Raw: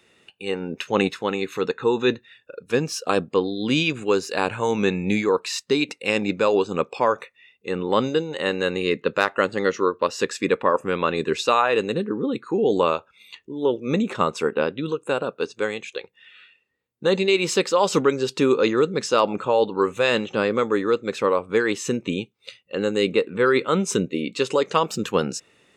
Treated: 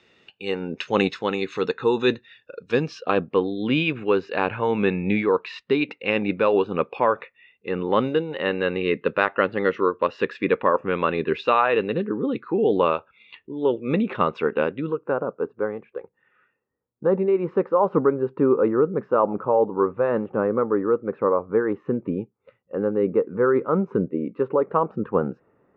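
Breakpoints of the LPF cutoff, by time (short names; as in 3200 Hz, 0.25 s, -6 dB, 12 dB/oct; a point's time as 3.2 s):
LPF 24 dB/oct
2.61 s 5600 Hz
3.16 s 3000 Hz
14.62 s 3000 Hz
15.25 s 1300 Hz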